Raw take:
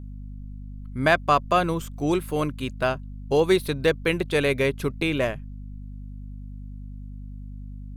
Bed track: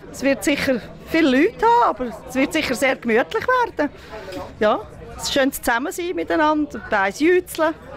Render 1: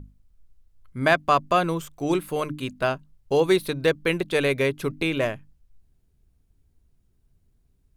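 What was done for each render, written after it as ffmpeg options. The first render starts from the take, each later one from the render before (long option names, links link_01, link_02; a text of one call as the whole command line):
ffmpeg -i in.wav -af "bandreject=frequency=50:width_type=h:width=6,bandreject=frequency=100:width_type=h:width=6,bandreject=frequency=150:width_type=h:width=6,bandreject=frequency=200:width_type=h:width=6,bandreject=frequency=250:width_type=h:width=6,bandreject=frequency=300:width_type=h:width=6" out.wav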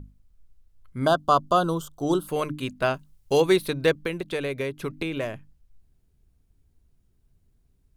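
ffmpeg -i in.wav -filter_complex "[0:a]asplit=3[link_01][link_02][link_03];[link_01]afade=type=out:start_time=1.05:duration=0.02[link_04];[link_02]asuperstop=centerf=2100:order=12:qfactor=1.5,afade=type=in:start_time=1.05:duration=0.02,afade=type=out:start_time=2.27:duration=0.02[link_05];[link_03]afade=type=in:start_time=2.27:duration=0.02[link_06];[link_04][link_05][link_06]amix=inputs=3:normalize=0,asettb=1/sr,asplit=3[link_07][link_08][link_09];[link_07]atrim=end=2.944[link_10];[link_08]atrim=start=2.94:end=3.42,asetpts=PTS-STARTPTS,afade=type=in:duration=0.004:curve=qsin,afade=type=out:start_time=0.476:duration=0.004:curve=qsin,highshelf=frequency=3400:gain=10[link_11];[link_09]atrim=start=3.416[link_12];[link_10][link_11]acrossfade=duration=0.004:curve1=hsin:curve2=qsin[link_13];[link_13][link_12]acrossfade=duration=0.004:curve1=qsin:curve2=hsin,asettb=1/sr,asplit=3[link_14][link_15][link_16];[link_14]atrim=end=3.954[link_17];[link_15]atrim=start=3.95:end=5.34,asetpts=PTS-STARTPTS,afade=type=in:duration=0.004:curve=qsin,afade=type=out:start_time=1.386:duration=0.004:curve=qsin,acrossover=split=810|3900[link_18][link_19][link_20];[link_18]acompressor=threshold=-28dB:ratio=4[link_21];[link_19]acompressor=threshold=-35dB:ratio=4[link_22];[link_20]acompressor=threshold=-47dB:ratio=4[link_23];[link_21][link_22][link_23]amix=inputs=3:normalize=0[link_24];[link_16]atrim=start=5.336[link_25];[link_17][link_24]acrossfade=duration=0.004:curve1=hsin:curve2=qsin[link_26];[link_26][link_25]acrossfade=duration=0.004:curve1=qsin:curve2=hsin" out.wav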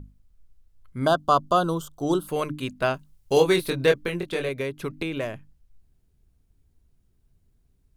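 ffmpeg -i in.wav -filter_complex "[0:a]asettb=1/sr,asplit=3[link_01][link_02][link_03];[link_01]atrim=end=3.344[link_04];[link_02]atrim=start=3.34:end=4.49,asetpts=PTS-STARTPTS,afade=type=in:duration=0.004:curve=qsin,afade=type=out:start_time=1.146:duration=0.004:curve=qsin,asplit=2[link_05][link_06];[link_06]adelay=23,volume=-4dB[link_07];[link_05][link_07]amix=inputs=2:normalize=0,atrim=end_sample=50715[link_08];[link_03]atrim=start=4.486[link_09];[link_04][link_08]acrossfade=duration=0.004:curve1=hsin:curve2=qsin[link_10];[link_10][link_09]acrossfade=duration=0.004:curve1=qsin:curve2=hsin" out.wav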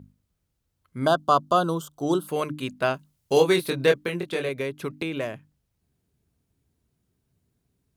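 ffmpeg -i in.wav -af "highpass=110" out.wav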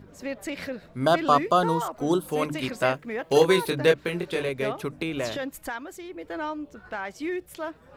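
ffmpeg -i in.wav -i bed.wav -filter_complex "[1:a]volume=-14.5dB[link_01];[0:a][link_01]amix=inputs=2:normalize=0" out.wav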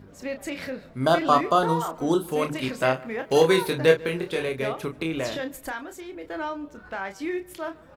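ffmpeg -i in.wav -filter_complex "[0:a]asplit=2[link_01][link_02];[link_02]adelay=31,volume=-8dB[link_03];[link_01][link_03]amix=inputs=2:normalize=0,asplit=2[link_04][link_05];[link_05]adelay=145,lowpass=frequency=2700:poles=1,volume=-21.5dB,asplit=2[link_06][link_07];[link_07]adelay=145,lowpass=frequency=2700:poles=1,volume=0.49,asplit=2[link_08][link_09];[link_09]adelay=145,lowpass=frequency=2700:poles=1,volume=0.49[link_10];[link_04][link_06][link_08][link_10]amix=inputs=4:normalize=0" out.wav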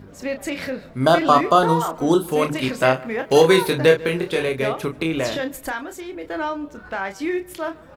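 ffmpeg -i in.wav -af "volume=5.5dB,alimiter=limit=-3dB:level=0:latency=1" out.wav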